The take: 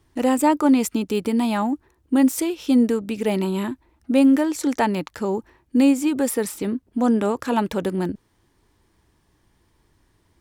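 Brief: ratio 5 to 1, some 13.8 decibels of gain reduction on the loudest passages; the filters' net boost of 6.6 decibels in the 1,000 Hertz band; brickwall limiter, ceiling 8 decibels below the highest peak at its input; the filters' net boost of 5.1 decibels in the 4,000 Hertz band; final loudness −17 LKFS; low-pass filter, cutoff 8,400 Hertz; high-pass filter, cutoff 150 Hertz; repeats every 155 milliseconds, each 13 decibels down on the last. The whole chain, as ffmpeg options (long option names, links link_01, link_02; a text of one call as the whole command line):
ffmpeg -i in.wav -af "highpass=150,lowpass=8400,equalizer=frequency=1000:width_type=o:gain=7.5,equalizer=frequency=4000:width_type=o:gain=6.5,acompressor=threshold=-25dB:ratio=5,alimiter=limit=-20.5dB:level=0:latency=1,aecho=1:1:155|310|465:0.224|0.0493|0.0108,volume=13.5dB" out.wav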